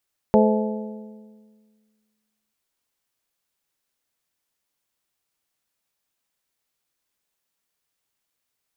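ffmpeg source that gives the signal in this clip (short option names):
-f lavfi -i "aevalsrc='0.188*pow(10,-3*t/1.81)*sin(2*PI*215*t)+0.158*pow(10,-3*t/1.47)*sin(2*PI*430*t)+0.133*pow(10,-3*t/1.392)*sin(2*PI*516*t)+0.112*pow(10,-3*t/1.302)*sin(2*PI*645*t)+0.0944*pow(10,-3*t/1.194)*sin(2*PI*860*t)':d=2.19:s=44100"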